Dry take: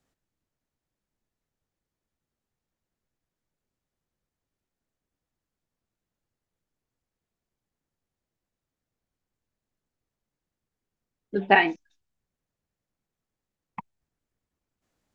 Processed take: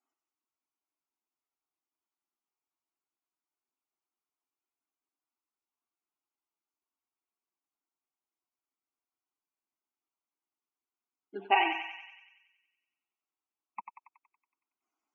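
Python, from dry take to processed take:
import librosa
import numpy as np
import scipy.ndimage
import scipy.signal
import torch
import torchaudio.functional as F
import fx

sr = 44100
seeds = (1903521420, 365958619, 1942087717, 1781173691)

y = scipy.signal.sosfilt(scipy.signal.butter(4, 320.0, 'highpass', fs=sr, output='sos'), x)
y = fx.spec_topn(y, sr, count=64)
y = fx.fixed_phaser(y, sr, hz=2600.0, stages=8)
y = fx.echo_thinned(y, sr, ms=93, feedback_pct=65, hz=870.0, wet_db=-5.0)
y = y * 10.0 ** (-2.5 / 20.0)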